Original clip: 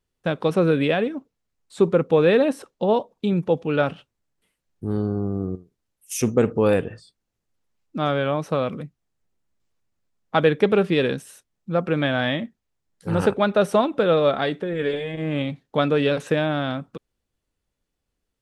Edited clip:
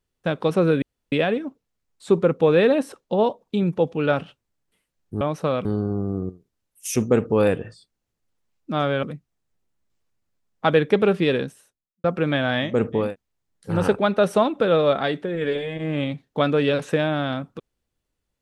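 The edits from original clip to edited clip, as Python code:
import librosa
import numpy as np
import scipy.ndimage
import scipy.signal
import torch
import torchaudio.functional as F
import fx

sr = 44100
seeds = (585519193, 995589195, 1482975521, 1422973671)

y = fx.studio_fade_out(x, sr, start_s=10.94, length_s=0.8)
y = fx.edit(y, sr, fx.insert_room_tone(at_s=0.82, length_s=0.3),
    fx.duplicate(start_s=6.35, length_s=0.32, to_s=12.42, crossfade_s=0.24),
    fx.move(start_s=8.29, length_s=0.44, to_s=4.91), tone=tone)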